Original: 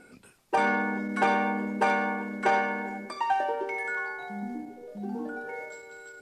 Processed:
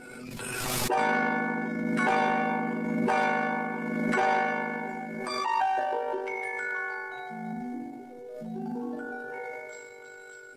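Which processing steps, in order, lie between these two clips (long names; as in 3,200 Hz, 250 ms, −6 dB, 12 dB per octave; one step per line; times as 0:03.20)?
transient designer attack −3 dB, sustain +2 dB
time stretch by overlap-add 1.7×, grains 39 ms
in parallel at −10 dB: gain into a clipping stage and back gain 22.5 dB
on the sum: background raised ahead of every attack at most 24 dB per second
level −2 dB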